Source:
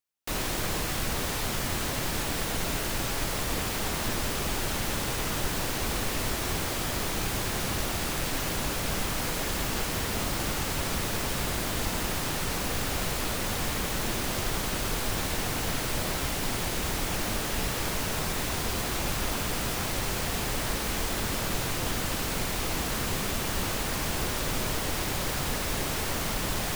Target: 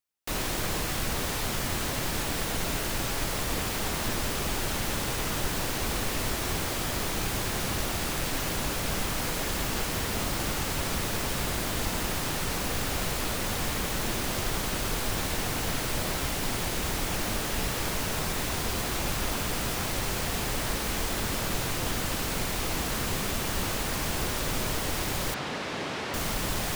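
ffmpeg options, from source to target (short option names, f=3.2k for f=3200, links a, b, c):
-filter_complex "[0:a]asettb=1/sr,asplit=3[a][b][c];[a]atrim=end=25.344[d];[b]atrim=start=25.34:end=26.14,asetpts=PTS-STARTPTS,afade=t=in:d=0.004:c=qsin,afade=t=out:st=0.796:d=0.004:c=qsin,highpass=170,lowpass=4k[e];[c]atrim=start=26.136[f];[d][e]acrossfade=d=0.004:c1=hsin:c2=qsin[g];[g][f]acrossfade=d=0.004:c1=qsin:c2=hsin"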